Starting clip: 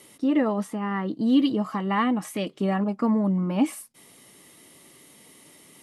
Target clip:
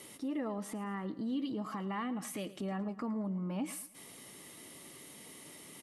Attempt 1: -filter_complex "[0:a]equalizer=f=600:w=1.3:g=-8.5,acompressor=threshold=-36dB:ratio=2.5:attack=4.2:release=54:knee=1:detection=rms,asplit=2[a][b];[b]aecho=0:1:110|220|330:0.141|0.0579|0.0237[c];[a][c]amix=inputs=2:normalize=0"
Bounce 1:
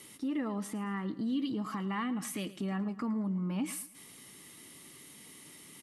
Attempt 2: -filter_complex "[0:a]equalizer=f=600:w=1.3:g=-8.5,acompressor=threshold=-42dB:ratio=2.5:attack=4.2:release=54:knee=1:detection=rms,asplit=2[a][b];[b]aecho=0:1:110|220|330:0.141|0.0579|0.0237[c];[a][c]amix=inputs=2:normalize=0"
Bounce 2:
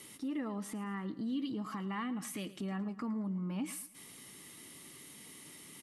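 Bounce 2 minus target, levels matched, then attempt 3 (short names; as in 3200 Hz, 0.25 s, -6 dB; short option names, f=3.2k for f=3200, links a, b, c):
500 Hz band -3.0 dB
-filter_complex "[0:a]acompressor=threshold=-42dB:ratio=2.5:attack=4.2:release=54:knee=1:detection=rms,asplit=2[a][b];[b]aecho=0:1:110|220|330:0.141|0.0579|0.0237[c];[a][c]amix=inputs=2:normalize=0"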